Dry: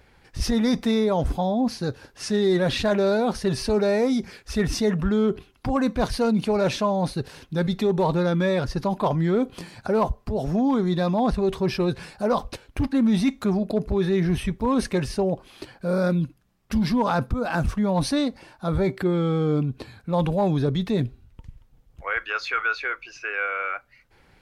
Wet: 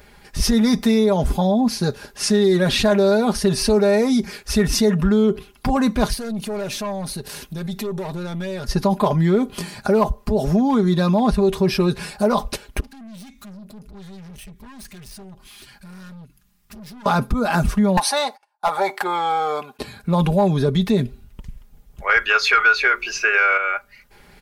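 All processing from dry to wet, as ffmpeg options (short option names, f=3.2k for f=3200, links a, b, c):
-filter_complex "[0:a]asettb=1/sr,asplit=3[a][b][c];[a]atrim=end=6.134[d];[b]atrim=start=6.13:end=8.69,asetpts=PTS-STARTPTS,afade=t=in:d=0.004:c=qsin,afade=t=out:st=2.556:d=0.004:c=qsin,highshelf=f=7.4k:g=9,aeval=exprs='(tanh(10*val(0)+0.25)-tanh(0.25))/10':c=same,acompressor=threshold=-39dB:ratio=2.5:attack=3.2:release=140:knee=1:detection=peak[e];[c]atrim=start=8.686[f];[d][e]acrossfade=d=0.004:c1=hsin:c2=qsin[g];[g][f]acrossfade=d=0.004:c1=qsin:c2=hsin,asettb=1/sr,asplit=3[h][i][j];[h]atrim=end=12.804[k];[i]atrim=start=12.8:end=17.06,asetpts=PTS-STARTPTS,afade=t=in:d=0.004:c=qsin,afade=t=out:st=4.256:d=0.004:c=qsin,equalizer=f=500:t=o:w=1.9:g=-14,acompressor=threshold=-47dB:ratio=2:attack=3.2:release=140:knee=1:detection=peak,aeval=exprs='(tanh(224*val(0)+0.2)-tanh(0.2))/224':c=same[l];[j]atrim=start=17.056[m];[k][l]acrossfade=d=0.004:c1=hsin:c2=qsin[n];[n][m]acrossfade=d=0.004:c1=qsin:c2=hsin,asettb=1/sr,asplit=3[o][p][q];[o]atrim=end=17.974[r];[p]atrim=start=17.97:end=19.79,asetpts=PTS-STARTPTS,afade=t=in:d=0.004:c=qsin,afade=t=out:st=1.816:d=0.004:c=qsin,agate=range=-37dB:threshold=-43dB:ratio=16:release=100:detection=peak,highpass=f=840:t=q:w=5,aeval=exprs='clip(val(0),-1,0.112)':c=same[s];[q]atrim=start=19.786[t];[r][s]acrossfade=d=0.004:c1=hsin:c2=qsin[u];[u][t]acrossfade=d=0.004:c1=qsin:c2=hsin,asettb=1/sr,asplit=3[v][w][x];[v]atrim=end=22.094[y];[w]atrim=start=22.09:end=23.58,asetpts=PTS-STARTPTS,afade=t=in:d=0.004:c=qsin,afade=t=out:st=1.486:d=0.004:c=qsin,bandreject=f=60:t=h:w=6,bandreject=f=120:t=h:w=6,bandreject=f=180:t=h:w=6,bandreject=f=240:t=h:w=6,bandreject=f=300:t=h:w=6,bandreject=f=360:t=h:w=6,bandreject=f=420:t=h:w=6,acontrast=78[z];[x]atrim=start=23.576[aa];[y][z]acrossfade=d=0.004:c1=hsin:c2=qsin[ab];[ab][aa]acrossfade=d=0.004:c1=qsin:c2=hsin,highshelf=f=8.2k:g=10.5,aecho=1:1:4.9:0.55,acompressor=threshold=-23dB:ratio=2,volume=6.5dB"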